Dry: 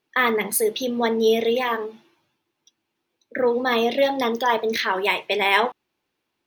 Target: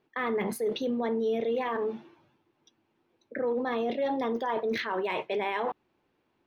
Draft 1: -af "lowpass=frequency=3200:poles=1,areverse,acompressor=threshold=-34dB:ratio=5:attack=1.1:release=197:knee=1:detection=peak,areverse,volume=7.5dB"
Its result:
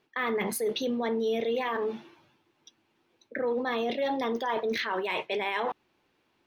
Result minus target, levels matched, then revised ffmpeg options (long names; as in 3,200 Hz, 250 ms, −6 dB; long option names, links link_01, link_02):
4,000 Hz band +4.5 dB
-af "lowpass=frequency=1000:poles=1,areverse,acompressor=threshold=-34dB:ratio=5:attack=1.1:release=197:knee=1:detection=peak,areverse,volume=7.5dB"